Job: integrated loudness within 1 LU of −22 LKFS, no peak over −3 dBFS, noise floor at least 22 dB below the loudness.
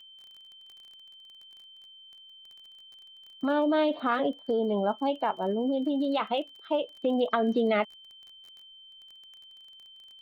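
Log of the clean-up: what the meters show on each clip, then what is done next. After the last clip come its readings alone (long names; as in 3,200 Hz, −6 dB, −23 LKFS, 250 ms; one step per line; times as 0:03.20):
crackle rate 23 per second; interfering tone 3,100 Hz; level of the tone −49 dBFS; integrated loudness −28.0 LKFS; sample peak −12.0 dBFS; target loudness −22.0 LKFS
→ click removal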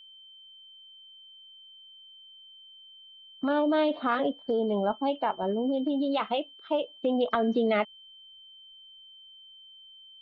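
crackle rate 0 per second; interfering tone 3,100 Hz; level of the tone −49 dBFS
→ notch filter 3,100 Hz, Q 30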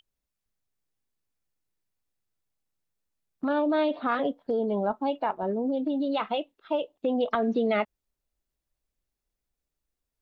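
interfering tone none found; integrated loudness −28.0 LKFS; sample peak −12.0 dBFS; target loudness −22.0 LKFS
→ level +6 dB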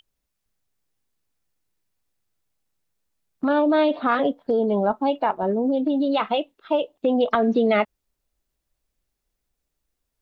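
integrated loudness −22.0 LKFS; sample peak −6.0 dBFS; background noise floor −80 dBFS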